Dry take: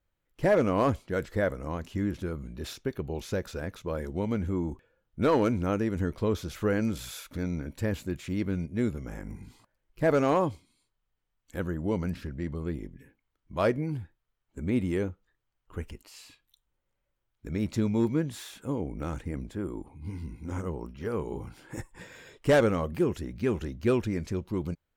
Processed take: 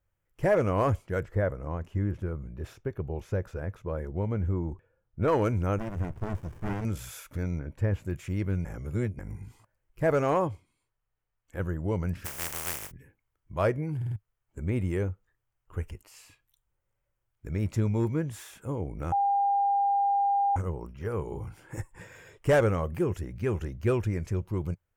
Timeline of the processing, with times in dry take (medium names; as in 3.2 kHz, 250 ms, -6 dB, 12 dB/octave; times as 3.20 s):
1.20–5.28 s: treble shelf 2.7 kHz -12 dB
5.78–6.85 s: sliding maximum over 65 samples
7.59–8.05 s: low-pass 2.1 kHz 6 dB/octave
8.65–9.19 s: reverse
10.47–11.60 s: tone controls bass -3 dB, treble -7 dB
12.24–12.90 s: spectral contrast reduction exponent 0.11
13.96 s: stutter in place 0.05 s, 4 plays
19.12–20.56 s: bleep 801 Hz -21.5 dBFS
whole clip: fifteen-band graphic EQ 100 Hz +7 dB, 250 Hz -7 dB, 4 kHz -10 dB